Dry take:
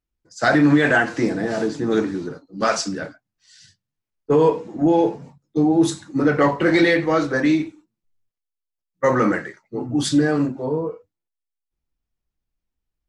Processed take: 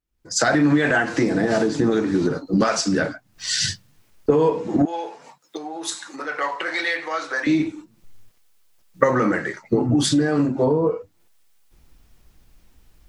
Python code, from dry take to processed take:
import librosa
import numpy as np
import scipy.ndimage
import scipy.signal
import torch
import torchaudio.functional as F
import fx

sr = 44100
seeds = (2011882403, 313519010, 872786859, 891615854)

y = fx.recorder_agc(x, sr, target_db=-9.0, rise_db_per_s=61.0, max_gain_db=30)
y = fx.highpass(y, sr, hz=890.0, slope=12, at=(4.85, 7.47))
y = y * 10.0 ** (-2.5 / 20.0)